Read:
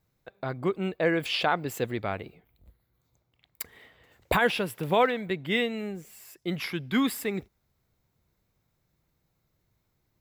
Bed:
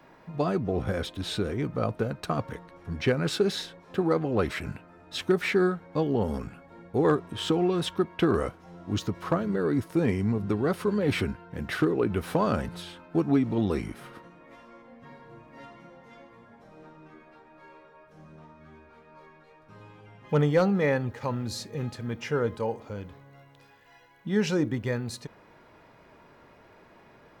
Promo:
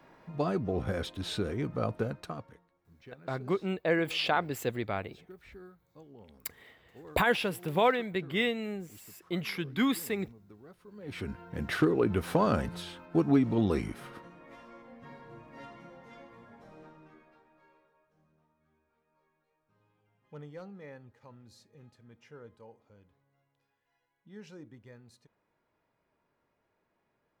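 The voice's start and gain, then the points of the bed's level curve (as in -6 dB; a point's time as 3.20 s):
2.85 s, -2.5 dB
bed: 2.09 s -3.5 dB
2.82 s -27 dB
10.87 s -27 dB
11.40 s -1 dB
16.69 s -1 dB
18.46 s -23 dB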